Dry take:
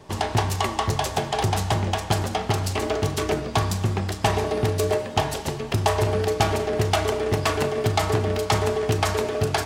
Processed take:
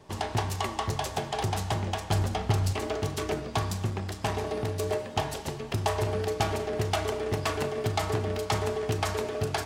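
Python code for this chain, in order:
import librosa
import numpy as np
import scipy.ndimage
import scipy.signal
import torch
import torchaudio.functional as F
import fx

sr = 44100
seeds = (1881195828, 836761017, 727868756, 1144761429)

y = fx.low_shelf(x, sr, hz=120.0, db=11.5, at=(2.12, 2.73))
y = fx.transformer_sat(y, sr, knee_hz=550.0, at=(3.9, 4.87))
y = y * librosa.db_to_amplitude(-6.5)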